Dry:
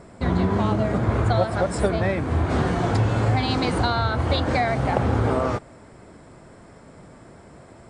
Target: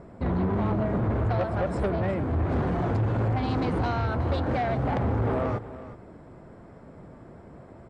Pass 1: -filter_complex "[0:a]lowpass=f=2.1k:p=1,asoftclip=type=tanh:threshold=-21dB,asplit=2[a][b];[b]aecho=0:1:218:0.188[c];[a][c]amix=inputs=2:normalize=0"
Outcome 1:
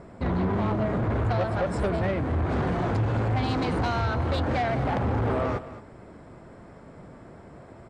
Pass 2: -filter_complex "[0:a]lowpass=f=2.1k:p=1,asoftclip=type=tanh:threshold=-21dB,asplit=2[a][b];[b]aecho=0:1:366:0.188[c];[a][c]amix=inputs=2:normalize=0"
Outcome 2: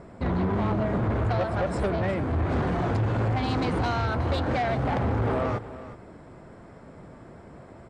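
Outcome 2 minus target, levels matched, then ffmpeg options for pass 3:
2000 Hz band +3.0 dB
-filter_complex "[0:a]lowpass=f=960:p=1,asoftclip=type=tanh:threshold=-21dB,asplit=2[a][b];[b]aecho=0:1:366:0.188[c];[a][c]amix=inputs=2:normalize=0"

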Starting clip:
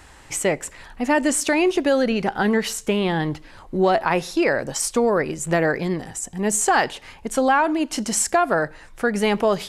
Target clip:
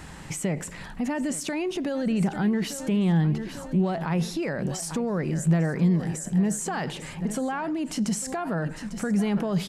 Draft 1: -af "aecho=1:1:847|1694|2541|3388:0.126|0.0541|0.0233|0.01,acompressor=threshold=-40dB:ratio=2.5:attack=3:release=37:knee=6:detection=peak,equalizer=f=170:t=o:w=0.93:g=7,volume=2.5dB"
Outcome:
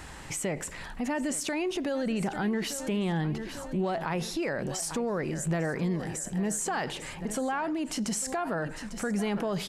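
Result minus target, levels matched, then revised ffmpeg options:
125 Hz band -4.0 dB
-af "aecho=1:1:847|1694|2541|3388:0.126|0.0541|0.0233|0.01,acompressor=threshold=-40dB:ratio=2.5:attack=3:release=37:knee=6:detection=peak,equalizer=f=170:t=o:w=0.93:g=16.5,volume=2.5dB"

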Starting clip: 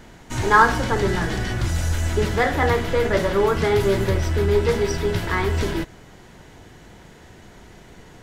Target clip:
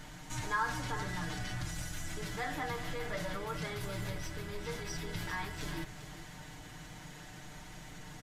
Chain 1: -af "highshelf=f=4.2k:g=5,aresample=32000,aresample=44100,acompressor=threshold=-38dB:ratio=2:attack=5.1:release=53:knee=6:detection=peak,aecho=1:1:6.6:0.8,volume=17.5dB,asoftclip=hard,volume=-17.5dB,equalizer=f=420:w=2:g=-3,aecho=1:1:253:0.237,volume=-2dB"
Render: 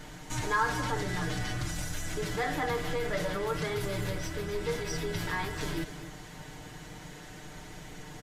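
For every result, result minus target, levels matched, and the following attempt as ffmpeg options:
echo 0.145 s early; compressor: peak gain reduction -5 dB; 500 Hz band +2.5 dB
-af "highshelf=f=4.2k:g=5,aresample=32000,aresample=44100,acompressor=threshold=-38dB:ratio=2:attack=5.1:release=53:knee=6:detection=peak,aecho=1:1:6.6:0.8,volume=17.5dB,asoftclip=hard,volume=-17.5dB,equalizer=f=420:w=2:g=-3,aecho=1:1:398:0.237,volume=-2dB"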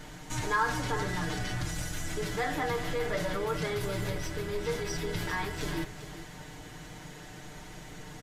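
compressor: peak gain reduction -5 dB; 500 Hz band +2.5 dB
-af "highshelf=f=4.2k:g=5,aresample=32000,aresample=44100,acompressor=threshold=-47.5dB:ratio=2:attack=5.1:release=53:knee=6:detection=peak,aecho=1:1:6.6:0.8,volume=17.5dB,asoftclip=hard,volume=-17.5dB,equalizer=f=420:w=2:g=-3,aecho=1:1:398:0.237,volume=-2dB"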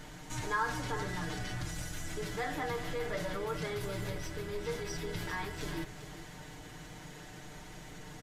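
500 Hz band +3.5 dB
-af "highshelf=f=4.2k:g=5,aresample=32000,aresample=44100,acompressor=threshold=-47.5dB:ratio=2:attack=5.1:release=53:knee=6:detection=peak,aecho=1:1:6.6:0.8,volume=17.5dB,asoftclip=hard,volume=-17.5dB,equalizer=f=420:w=2:g=-9.5,aecho=1:1:398:0.237,volume=-2dB"

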